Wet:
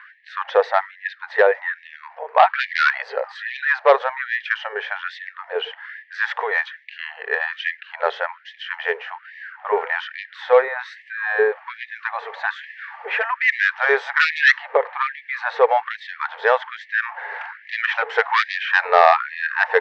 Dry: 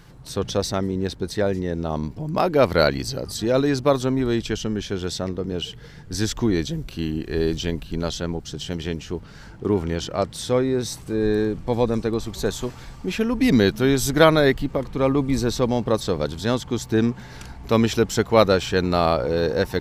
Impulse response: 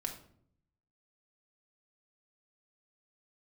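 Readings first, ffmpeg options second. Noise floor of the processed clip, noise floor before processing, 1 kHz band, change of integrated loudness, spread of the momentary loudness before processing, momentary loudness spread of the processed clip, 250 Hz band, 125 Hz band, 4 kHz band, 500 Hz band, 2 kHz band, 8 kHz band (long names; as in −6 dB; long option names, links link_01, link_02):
−48 dBFS, −42 dBFS, +7.5 dB, +2.0 dB, 12 LU, 16 LU, below −25 dB, below −40 dB, −2.5 dB, −0.5 dB, +12.5 dB, below −15 dB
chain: -filter_complex "[0:a]asoftclip=type=hard:threshold=-10dB,highpass=frequency=300:width=0.5412,highpass=frequency=300:width=1.3066,equalizer=frequency=580:width_type=q:width=4:gain=-4,equalizer=frequency=850:width_type=q:width=4:gain=5,equalizer=frequency=1800:width_type=q:width=4:gain=9,lowpass=frequency=2300:width=0.5412,lowpass=frequency=2300:width=1.3066,aeval=exprs='0.531*sin(PI/2*1.58*val(0)/0.531)':channel_layout=same,asplit=2[link_01][link_02];[1:a]atrim=start_sample=2205[link_03];[link_02][link_03]afir=irnorm=-1:irlink=0,volume=-19dB[link_04];[link_01][link_04]amix=inputs=2:normalize=0,afftfilt=real='re*gte(b*sr/1024,400*pow(1700/400,0.5+0.5*sin(2*PI*1.2*pts/sr)))':imag='im*gte(b*sr/1024,400*pow(1700/400,0.5+0.5*sin(2*PI*1.2*pts/sr)))':win_size=1024:overlap=0.75,volume=2dB"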